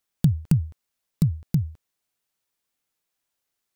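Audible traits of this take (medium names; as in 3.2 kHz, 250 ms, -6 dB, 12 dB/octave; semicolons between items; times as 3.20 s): noise floor -81 dBFS; spectral tilt -17.0 dB/octave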